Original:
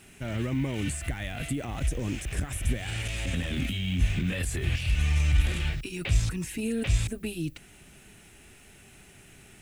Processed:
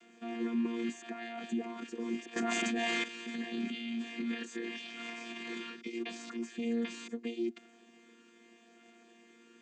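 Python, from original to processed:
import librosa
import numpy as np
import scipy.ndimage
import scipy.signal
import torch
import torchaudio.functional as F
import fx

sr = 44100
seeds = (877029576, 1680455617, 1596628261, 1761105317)

y = fx.chord_vocoder(x, sr, chord='bare fifth', root=58)
y = fx.low_shelf(y, sr, hz=450.0, db=-7.5)
y = fx.env_flatten(y, sr, amount_pct=100, at=(2.36, 3.04))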